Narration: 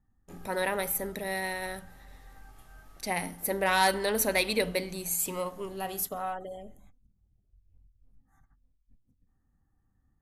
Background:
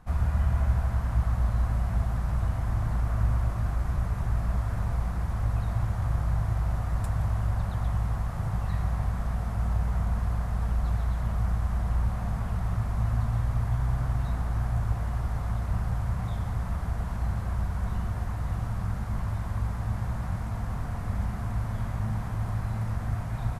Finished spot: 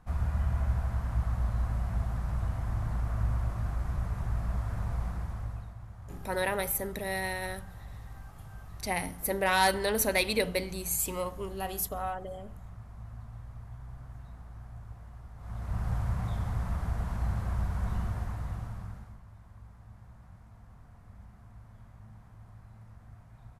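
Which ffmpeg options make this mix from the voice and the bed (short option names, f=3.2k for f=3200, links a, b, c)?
-filter_complex "[0:a]adelay=5800,volume=-0.5dB[a];[1:a]volume=11.5dB,afade=t=out:st=5.07:d=0.68:silence=0.211349,afade=t=in:st=15.37:d=0.56:silence=0.158489,afade=t=out:st=18.01:d=1.18:silence=0.105925[b];[a][b]amix=inputs=2:normalize=0"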